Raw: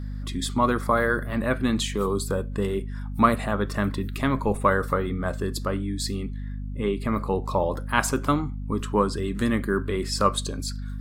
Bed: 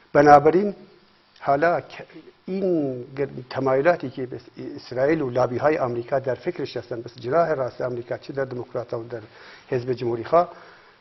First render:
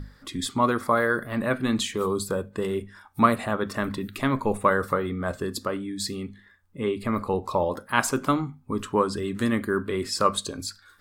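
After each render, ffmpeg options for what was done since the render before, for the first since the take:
-af "bandreject=f=50:t=h:w=6,bandreject=f=100:t=h:w=6,bandreject=f=150:t=h:w=6,bandreject=f=200:t=h:w=6,bandreject=f=250:t=h:w=6"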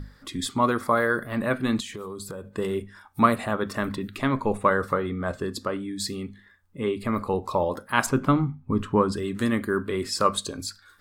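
-filter_complex "[0:a]asettb=1/sr,asplit=3[a][b][c];[a]atrim=end=1.804[d];[b]atrim=start=1.8:end=2.49,asetpts=PTS-STARTPTS,afade=t=in:d=0.004:c=qsin,afade=t=out:st=0.686:d=0.004:c=qsin,acompressor=threshold=-33dB:ratio=6:attack=3.2:release=140:knee=1:detection=peak[e];[c]atrim=start=2.486[f];[d][e]acrossfade=d=0.004:c1=hsin:c2=qsin[g];[g][f]acrossfade=d=0.004:c1=qsin:c2=hsin,asettb=1/sr,asplit=3[h][i][j];[h]atrim=end=3.964[k];[i]atrim=start=3.96:end=5.79,asetpts=PTS-STARTPTS,afade=t=in:d=0.004:c=qsin,afade=t=out:st=1.826:d=0.004:c=qsin,highshelf=f=10k:g=-10.5[l];[j]atrim=start=5.786[m];[k][l]acrossfade=d=0.004:c1=hsin:c2=qsin[n];[n][m]acrossfade=d=0.004:c1=qsin:c2=hsin,asettb=1/sr,asplit=3[o][p][q];[o]atrim=end=8.064[r];[p]atrim=start=8.06:end=9.12,asetpts=PTS-STARTPTS,afade=t=in:d=0.004:c=qsin,afade=t=out:st=1.056:d=0.004:c=qsin,bass=f=250:g=8,treble=f=4k:g=-11[s];[q]atrim=start=9.116[t];[r][s]acrossfade=d=0.004:c1=hsin:c2=qsin[u];[u][t]acrossfade=d=0.004:c1=qsin:c2=hsin"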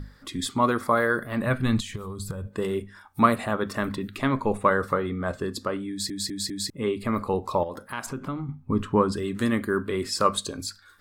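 -filter_complex "[0:a]asplit=3[a][b][c];[a]afade=t=out:st=1.44:d=0.02[d];[b]asubboost=boost=9.5:cutoff=130,afade=t=in:st=1.44:d=0.02,afade=t=out:st=2.46:d=0.02[e];[c]afade=t=in:st=2.46:d=0.02[f];[d][e][f]amix=inputs=3:normalize=0,asettb=1/sr,asplit=3[g][h][i];[g]atrim=end=7.634[j];[h]atrim=start=7.63:end=8.49,asetpts=PTS-STARTPTS,afade=t=in:d=0.004:c=qsin,afade=t=out:st=0.856:d=0.004:c=qsin,acompressor=threshold=-33dB:ratio=2.5:attack=3.2:release=140:knee=1:detection=peak[k];[i]atrim=start=8.486[l];[j][k]acrossfade=d=0.004:c1=hsin:c2=qsin[m];[m][l]acrossfade=d=0.004:c1=qsin:c2=hsin,asplit=5[n][o][p][q][r];[n]atrim=end=6.102[s];[o]atrim=start=5.898:end=6.102[t];[p]atrim=start=5.898:end=6.102[u];[q]atrim=start=5.898:end=6.102[v];[r]atrim=start=6.698[w];[s][t]acrossfade=d=0.004:c1=hsin:c2=hsin[x];[x][u]acrossfade=d=0.004:c1=hsin:c2=hsin[y];[y][v]acrossfade=d=0.004:c1=hsin:c2=hsin[z];[z][w]acrossfade=d=0.004:c1=hsin:c2=hsin"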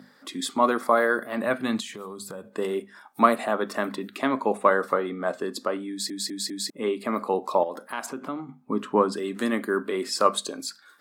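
-af "highpass=f=220:w=0.5412,highpass=f=220:w=1.3066,equalizer=f=700:w=2.5:g=5.5"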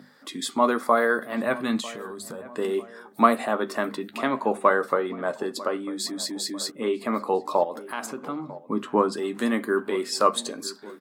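-filter_complex "[0:a]asplit=2[a][b];[b]adelay=13,volume=-10.5dB[c];[a][c]amix=inputs=2:normalize=0,asplit=2[d][e];[e]adelay=946,lowpass=f=1.4k:p=1,volume=-17.5dB,asplit=2[f][g];[g]adelay=946,lowpass=f=1.4k:p=1,volume=0.54,asplit=2[h][i];[i]adelay=946,lowpass=f=1.4k:p=1,volume=0.54,asplit=2[j][k];[k]adelay=946,lowpass=f=1.4k:p=1,volume=0.54,asplit=2[l][m];[m]adelay=946,lowpass=f=1.4k:p=1,volume=0.54[n];[d][f][h][j][l][n]amix=inputs=6:normalize=0"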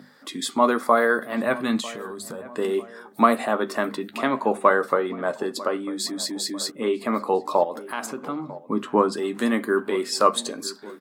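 -af "volume=2dB,alimiter=limit=-3dB:level=0:latency=1"

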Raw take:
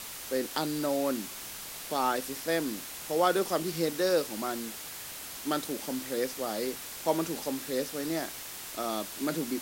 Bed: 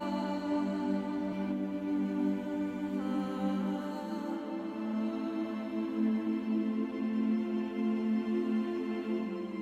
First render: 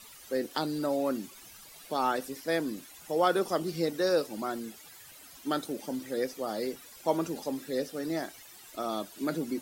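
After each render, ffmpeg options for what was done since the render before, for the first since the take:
-af "afftdn=nr=14:nf=-42"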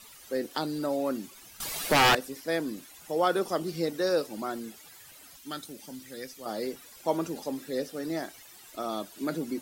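-filter_complex "[0:a]asettb=1/sr,asplit=3[a][b][c];[a]atrim=end=1.604[d];[b]atrim=start=1.6:end=2.15,asetpts=PTS-STARTPTS,afade=t=in:d=0.004:c=qsin,afade=t=out:st=0.546:d=0.004:c=qsin,aeval=exprs='0.158*sin(PI/2*3.98*val(0)/0.158)':c=same[e];[c]atrim=start=2.146[f];[d][e]acrossfade=d=0.004:c1=hsin:c2=qsin[g];[g][f]acrossfade=d=0.004:c1=qsin:c2=hsin,asettb=1/sr,asplit=3[h][i][j];[h]atrim=end=5.364[k];[i]atrim=start=5.36:end=6.46,asetpts=PTS-STARTPTS,afade=t=in:d=0.004:c=qsin,afade=t=out:st=1.096:d=0.004:c=qsin,equalizer=f=510:w=0.44:g=-11.5[l];[j]atrim=start=6.456[m];[k][l]acrossfade=d=0.004:c1=hsin:c2=qsin[n];[n][m]acrossfade=d=0.004:c1=qsin:c2=hsin"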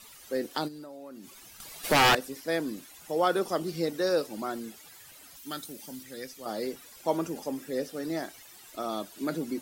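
-filter_complex "[0:a]asplit=3[a][b][c];[a]afade=t=out:st=0.67:d=0.02[d];[b]acompressor=threshold=-42dB:ratio=6:attack=3.2:release=140:knee=1:detection=peak,afade=t=in:st=0.67:d=0.02,afade=t=out:st=1.83:d=0.02[e];[c]afade=t=in:st=1.83:d=0.02[f];[d][e][f]amix=inputs=3:normalize=0,asettb=1/sr,asplit=3[g][h][i];[g]atrim=end=5.364[j];[h]atrim=start=5.36:end=6.03,asetpts=PTS-STARTPTS,afade=t=in:d=0.004:c=qsin,afade=t=out:st=0.666:d=0.004:c=qsin,highshelf=f=11k:g=7.5[k];[i]atrim=start=6.026[l];[j][k]acrossfade=d=0.004:c1=hsin:c2=qsin[m];[m][l]acrossfade=d=0.004:c1=qsin:c2=hsin,asettb=1/sr,asplit=3[n][o][p];[n]atrim=end=7.214[q];[o]atrim=start=7.21:end=7.83,asetpts=PTS-STARTPTS,afade=t=in:d=0.004:c=qsin,afade=t=out:st=0.616:d=0.004:c=qsin,equalizer=f=4k:w=5:g=-8[r];[p]atrim=start=7.826[s];[q][r]acrossfade=d=0.004:c1=hsin:c2=qsin[t];[t][s]acrossfade=d=0.004:c1=qsin:c2=hsin"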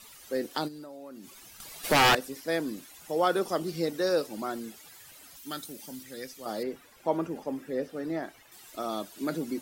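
-filter_complex "[0:a]asettb=1/sr,asplit=3[a][b][c];[a]atrim=end=6.634[d];[b]atrim=start=6.63:end=8.52,asetpts=PTS-STARTPTS,afade=t=in:d=0.004:c=qsin,afade=t=out:st=1.886:d=0.004:c=qsin,acrossover=split=2800[e][f];[f]acompressor=threshold=-59dB:ratio=4:attack=1:release=60[g];[e][g]amix=inputs=2:normalize=0[h];[c]atrim=start=8.516[i];[d][h]acrossfade=d=0.004:c1=hsin:c2=qsin[j];[j][i]acrossfade=d=0.004:c1=qsin:c2=hsin"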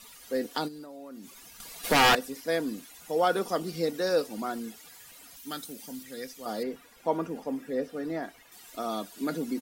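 -af "aecho=1:1:4.2:0.35"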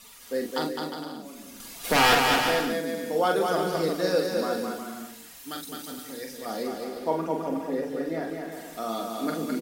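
-filter_complex "[0:a]asplit=2[a][b];[b]adelay=44,volume=-5dB[c];[a][c]amix=inputs=2:normalize=0,aecho=1:1:210|357|459.9|531.9|582.4:0.631|0.398|0.251|0.158|0.1"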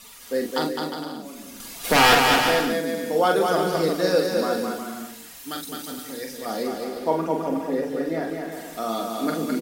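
-af "volume=4dB"

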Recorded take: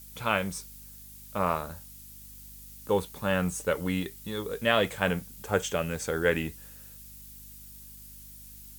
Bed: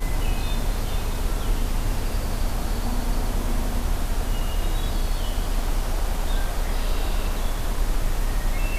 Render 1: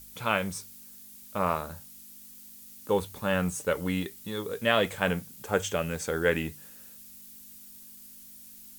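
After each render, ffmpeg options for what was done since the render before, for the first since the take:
-af "bandreject=f=50:t=h:w=4,bandreject=f=100:t=h:w=4,bandreject=f=150:t=h:w=4"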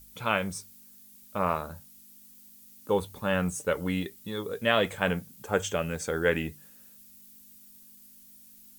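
-af "afftdn=nr=6:nf=-49"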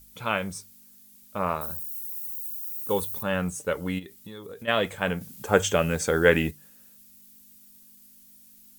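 -filter_complex "[0:a]asettb=1/sr,asplit=3[a][b][c];[a]atrim=end=1.614[d];[b]atrim=start=1.61:end=3.23,asetpts=PTS-STARTPTS,afade=t=in:d=0.004:c=qsin,afade=t=out:st=1.616:d=0.004:c=qsin,aemphasis=mode=production:type=50fm[e];[c]atrim=start=3.226[f];[d][e]acrossfade=d=0.004:c1=hsin:c2=qsin[g];[g][f]acrossfade=d=0.004:c1=qsin:c2=hsin,asplit=3[h][i][j];[h]afade=t=out:st=3.98:d=0.02[k];[i]acompressor=threshold=-37dB:ratio=6:attack=3.2:release=140:knee=1:detection=peak,afade=t=in:st=3.98:d=0.02,afade=t=out:st=4.67:d=0.02[l];[j]afade=t=in:st=4.67:d=0.02[m];[k][l][m]amix=inputs=3:normalize=0,asplit=3[n][o][p];[n]atrim=end=5.212[q];[o]atrim=start=5.208:end=6.512,asetpts=PTS-STARTPTS,volume=6.5dB[r];[p]atrim=start=6.508[s];[q][r]acrossfade=d=0.004:c1=hsin:c2=hsin[t];[t][s]acrossfade=d=0.004:c1=hsin:c2=hsin"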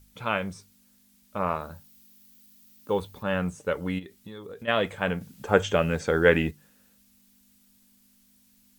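-filter_complex "[0:a]acrossover=split=5700[a][b];[b]acompressor=threshold=-43dB:ratio=4:attack=1:release=60[c];[a][c]amix=inputs=2:normalize=0,highshelf=f=6.7k:g=-11.5"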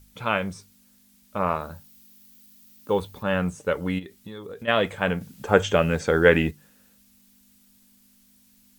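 -af "volume=3dB,alimiter=limit=-2dB:level=0:latency=1"

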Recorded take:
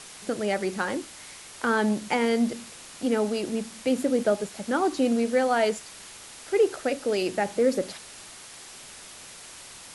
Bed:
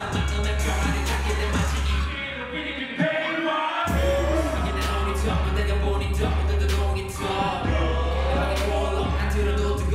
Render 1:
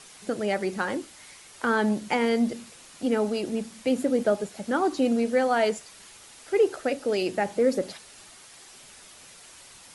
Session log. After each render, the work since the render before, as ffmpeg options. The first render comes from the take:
-af "afftdn=nr=6:nf=-45"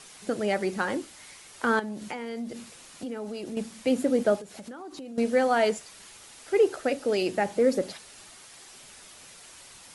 -filter_complex "[0:a]asettb=1/sr,asplit=3[a][b][c];[a]atrim=end=1.794[d];[b]atrim=start=1.79:end=3.57,asetpts=PTS-STARTPTS,afade=t=in:d=0.004:c=qsin,afade=t=out:st=1.776:d=0.004:c=qsin,acompressor=threshold=-33dB:ratio=4:attack=3.2:release=140:knee=1:detection=peak[e];[c]atrim=start=3.566[f];[d][e]acrossfade=d=0.004:c1=hsin:c2=qsin[g];[g][f]acrossfade=d=0.004:c1=qsin:c2=hsin,asettb=1/sr,asplit=3[h][i][j];[h]atrim=end=4.384[k];[i]atrim=start=4.38:end=5.18,asetpts=PTS-STARTPTS,afade=t=in:d=0.004:c=qsin,afade=t=out:st=0.796:d=0.004:c=qsin,acompressor=threshold=-37dB:ratio=12:attack=3.2:release=140:knee=1:detection=peak[l];[j]atrim=start=5.176[m];[k][l]acrossfade=d=0.004:c1=hsin:c2=qsin[n];[n][m]acrossfade=d=0.004:c1=qsin:c2=hsin"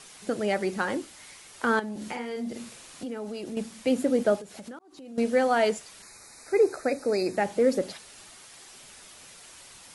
-filter_complex "[0:a]asettb=1/sr,asplit=3[a][b][c];[a]atrim=end=1.914[d];[b]atrim=start=1.91:end=3.03,asetpts=PTS-STARTPTS,afade=t=in:d=0.004:c=qsin,afade=t=out:st=1.116:d=0.004:c=qsin,asplit=2[e][f];[f]adelay=46,volume=-4dB[g];[e][g]amix=inputs=2:normalize=0,atrim=end_sample=49392[h];[c]atrim=start=3.026[i];[d][h]acrossfade=d=0.004:c1=hsin:c2=qsin[j];[j][i]acrossfade=d=0.004:c1=qsin:c2=hsin,asettb=1/sr,asplit=3[k][l][m];[k]atrim=end=6.024[n];[l]atrim=start=6.02:end=7.37,asetpts=PTS-STARTPTS,afade=t=in:d=0.004:c=qsin,afade=t=out:st=1.346:d=0.004:c=qsin,asuperstop=centerf=3100:order=12:qfactor=2.6[o];[m]atrim=start=7.366[p];[n][o]acrossfade=d=0.004:c1=hsin:c2=qsin[q];[q][p]acrossfade=d=0.004:c1=qsin:c2=hsin,asplit=2[r][s];[r]atrim=end=4.79,asetpts=PTS-STARTPTS,afade=t=out:st=4.786:d=0.004:c=hsin[t];[s]atrim=start=4.79,asetpts=PTS-STARTPTS,afade=t=in:d=0.4[u];[t][u]concat=n=2:v=0:a=1"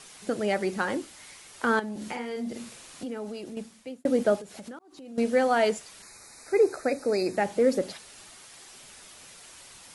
-filter_complex "[0:a]asplit=2[a][b];[a]atrim=end=4.05,asetpts=PTS-STARTPTS,afade=t=out:st=3.22:d=0.83[c];[b]atrim=start=4.05,asetpts=PTS-STARTPTS,afade=t=in:d=0.004:c=hsin[d];[c][d]concat=n=2:v=0:a=1"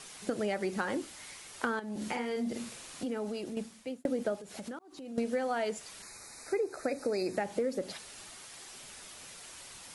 -af "acompressor=threshold=-28dB:ratio=16"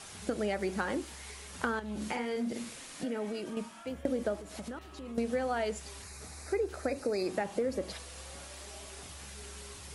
-filter_complex "[1:a]volume=-27dB[a];[0:a][a]amix=inputs=2:normalize=0"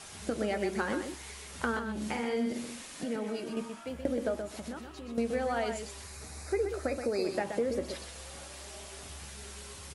-filter_complex "[0:a]asplit=2[a][b];[b]adelay=13,volume=-12dB[c];[a][c]amix=inputs=2:normalize=0,asplit=2[d][e];[e]aecho=0:1:126:0.447[f];[d][f]amix=inputs=2:normalize=0"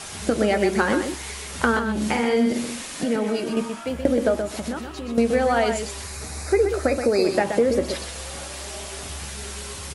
-af "volume=11.5dB"

